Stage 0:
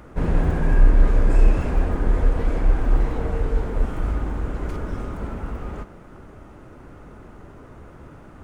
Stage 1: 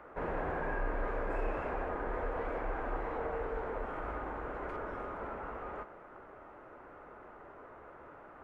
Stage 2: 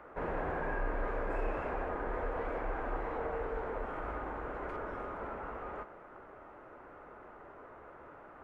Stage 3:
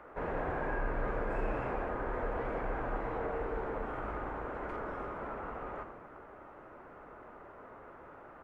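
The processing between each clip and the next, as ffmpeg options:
-filter_complex "[0:a]acrossover=split=420 2300:gain=0.1 1 0.0708[s0][s1][s2];[s0][s1][s2]amix=inputs=3:normalize=0,asplit=2[s3][s4];[s4]alimiter=level_in=1.5:limit=0.0631:level=0:latency=1:release=102,volume=0.668,volume=0.891[s5];[s3][s5]amix=inputs=2:normalize=0,volume=0.447"
-af anull
-filter_complex "[0:a]asplit=9[s0][s1][s2][s3][s4][s5][s6][s7][s8];[s1]adelay=81,afreqshift=-80,volume=0.316[s9];[s2]adelay=162,afreqshift=-160,volume=0.195[s10];[s3]adelay=243,afreqshift=-240,volume=0.122[s11];[s4]adelay=324,afreqshift=-320,volume=0.075[s12];[s5]adelay=405,afreqshift=-400,volume=0.0468[s13];[s6]adelay=486,afreqshift=-480,volume=0.0288[s14];[s7]adelay=567,afreqshift=-560,volume=0.018[s15];[s8]adelay=648,afreqshift=-640,volume=0.0111[s16];[s0][s9][s10][s11][s12][s13][s14][s15][s16]amix=inputs=9:normalize=0"

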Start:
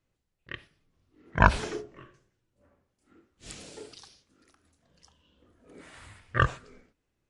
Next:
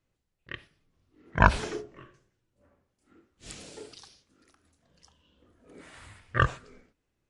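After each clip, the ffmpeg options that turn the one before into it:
-af anull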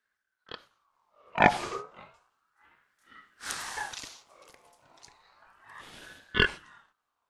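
-af "dynaudnorm=f=320:g=9:m=3.98,aeval=exprs='val(0)*sin(2*PI*1200*n/s+1200*0.35/0.32*sin(2*PI*0.32*n/s))':c=same"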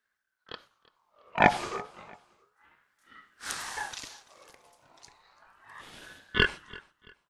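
-af "aecho=1:1:336|672:0.0794|0.0278"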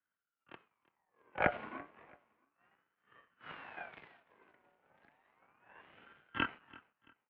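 -af "aeval=exprs='max(val(0),0)':c=same,highpass=f=260:t=q:w=0.5412,highpass=f=260:t=q:w=1.307,lowpass=f=2800:t=q:w=0.5176,lowpass=f=2800:t=q:w=0.7071,lowpass=f=2800:t=q:w=1.932,afreqshift=-130,volume=0.531"

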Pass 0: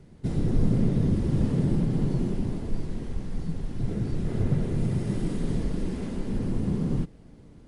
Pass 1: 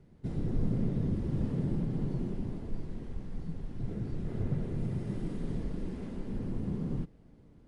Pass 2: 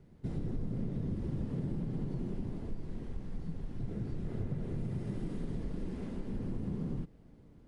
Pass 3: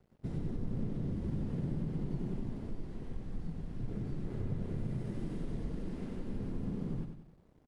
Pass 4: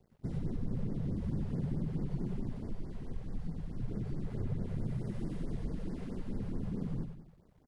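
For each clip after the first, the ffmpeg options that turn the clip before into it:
-af "highshelf=f=4200:g=-8.5,volume=0.422"
-af "acompressor=threshold=0.0251:ratio=4"
-af "aeval=exprs='sgn(val(0))*max(abs(val(0))-0.00126,0)':c=same,aecho=1:1:94|188|282|376|470:0.447|0.192|0.0826|0.0355|0.0153,volume=0.891"
-af "afftfilt=real='re*(1-between(b*sr/1024,250*pow(3200/250,0.5+0.5*sin(2*PI*4.6*pts/sr))/1.41,250*pow(3200/250,0.5+0.5*sin(2*PI*4.6*pts/sr))*1.41))':imag='im*(1-between(b*sr/1024,250*pow(3200/250,0.5+0.5*sin(2*PI*4.6*pts/sr))/1.41,250*pow(3200/250,0.5+0.5*sin(2*PI*4.6*pts/sr))*1.41))':win_size=1024:overlap=0.75,volume=1.12"

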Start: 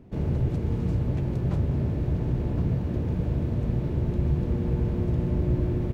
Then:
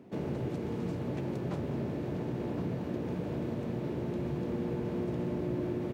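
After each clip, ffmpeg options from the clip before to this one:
-filter_complex "[0:a]highpass=230,asplit=2[s0][s1];[s1]alimiter=level_in=2.11:limit=0.0631:level=0:latency=1:release=353,volume=0.473,volume=1.19[s2];[s0][s2]amix=inputs=2:normalize=0,volume=0.562"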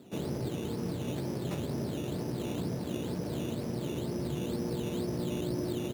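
-af "acrusher=samples=11:mix=1:aa=0.000001:lfo=1:lforange=6.6:lforate=2.1"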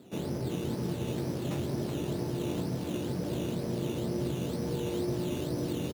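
-filter_complex "[0:a]asplit=2[s0][s1];[s1]adelay=23,volume=0.282[s2];[s0][s2]amix=inputs=2:normalize=0,aecho=1:1:374:0.531"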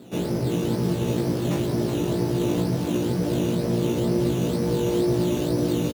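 -filter_complex "[0:a]asplit=2[s0][s1];[s1]adelay=17,volume=0.596[s2];[s0][s2]amix=inputs=2:normalize=0,volume=2.24"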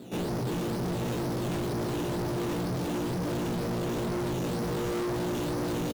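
-af "asoftclip=type=hard:threshold=0.0355"

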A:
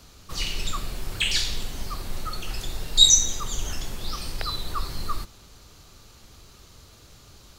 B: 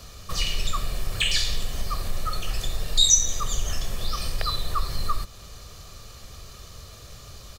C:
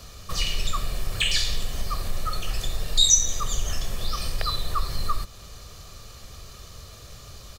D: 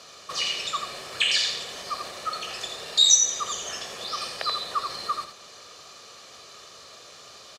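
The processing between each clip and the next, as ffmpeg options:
-af "aecho=1:1:1.7:0.48,acompressor=threshold=0.0224:ratio=1.5,volume=1.78"
-af anull
-af "highpass=390,lowpass=7000,aecho=1:1:83:0.473,volume=1.19"

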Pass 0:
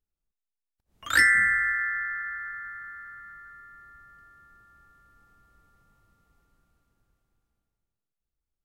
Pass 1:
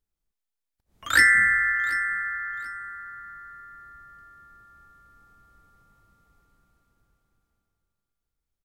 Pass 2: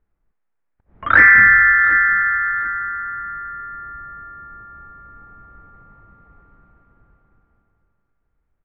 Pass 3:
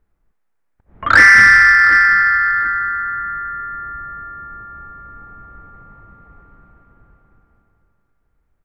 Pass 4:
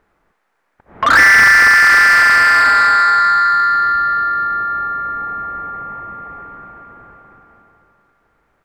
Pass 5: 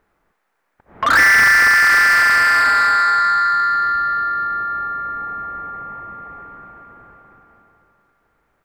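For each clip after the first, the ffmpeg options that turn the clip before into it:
-af "bandreject=f=2800:w=22,aecho=1:1:735|1470:0.141|0.0367,volume=1.33"
-af "aeval=exprs='0.562*sin(PI/2*2.24*val(0)/0.562)':c=same,lowpass=f=1900:w=0.5412,lowpass=f=1900:w=1.3066,volume=1.41"
-af "acontrast=51,volume=0.891"
-filter_complex "[0:a]asplit=2[s0][s1];[s1]highpass=f=720:p=1,volume=20,asoftclip=type=tanh:threshold=0.891[s2];[s0][s2]amix=inputs=2:normalize=0,lowpass=f=2400:p=1,volume=0.501,volume=0.841"
-af "highshelf=f=11000:g=7.5,volume=0.668"

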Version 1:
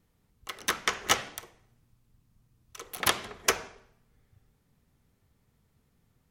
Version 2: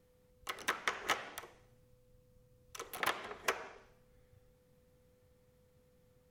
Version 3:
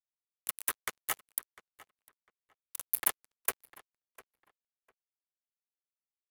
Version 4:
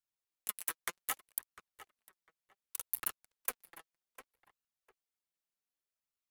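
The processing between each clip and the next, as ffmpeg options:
-filter_complex "[0:a]acrossover=split=310|2700[s0][s1][s2];[s0]acompressor=threshold=0.00112:ratio=4[s3];[s1]acompressor=threshold=0.0282:ratio=4[s4];[s2]acompressor=threshold=0.00562:ratio=4[s5];[s3][s4][s5]amix=inputs=3:normalize=0,aeval=exprs='val(0)+0.000355*sin(2*PI*500*n/s)':c=same,volume=0.891"
-filter_complex "[0:a]aexciter=amount=13.8:drive=2.8:freq=8000,acrusher=bits=4:mix=0:aa=0.5,asplit=2[s0][s1];[s1]adelay=701,lowpass=f=2700:p=1,volume=0.133,asplit=2[s2][s3];[s3]adelay=701,lowpass=f=2700:p=1,volume=0.22[s4];[s0][s2][s4]amix=inputs=3:normalize=0,volume=0.668"
-af "acompressor=threshold=0.0251:ratio=6,flanger=delay=0.7:depth=5.5:regen=34:speed=0.65:shape=sinusoidal,volume=1.68"

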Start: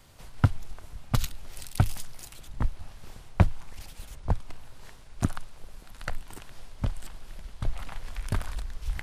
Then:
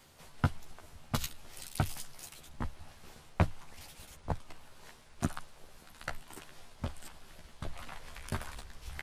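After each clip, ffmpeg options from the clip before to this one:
-filter_complex "[0:a]asplit=2[s0][s1];[s1]adelay=13,volume=0.631[s2];[s0][s2]amix=inputs=2:normalize=0,areverse,acompressor=mode=upward:threshold=0.0141:ratio=2.5,areverse,lowshelf=f=100:g=-11.5,volume=0.631"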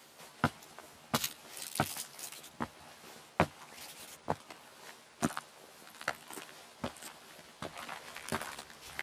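-af "highpass=230,volume=1.58"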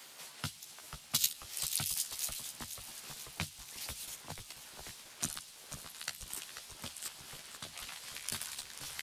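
-filter_complex "[0:a]tiltshelf=f=1200:g=-5.5,asplit=9[s0][s1][s2][s3][s4][s5][s6][s7][s8];[s1]adelay=489,afreqshift=-93,volume=0.266[s9];[s2]adelay=978,afreqshift=-186,volume=0.17[s10];[s3]adelay=1467,afreqshift=-279,volume=0.108[s11];[s4]adelay=1956,afreqshift=-372,volume=0.07[s12];[s5]adelay=2445,afreqshift=-465,volume=0.0447[s13];[s6]adelay=2934,afreqshift=-558,volume=0.0285[s14];[s7]adelay=3423,afreqshift=-651,volume=0.0182[s15];[s8]adelay=3912,afreqshift=-744,volume=0.0117[s16];[s0][s9][s10][s11][s12][s13][s14][s15][s16]amix=inputs=9:normalize=0,acrossover=split=170|3000[s17][s18][s19];[s18]acompressor=threshold=0.00158:ratio=2.5[s20];[s17][s20][s19]amix=inputs=3:normalize=0,volume=1.19"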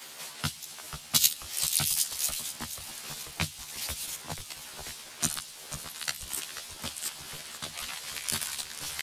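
-filter_complex "[0:a]asplit=2[s0][s1];[s1]adelay=13,volume=0.668[s2];[s0][s2]amix=inputs=2:normalize=0,volume=1.78"

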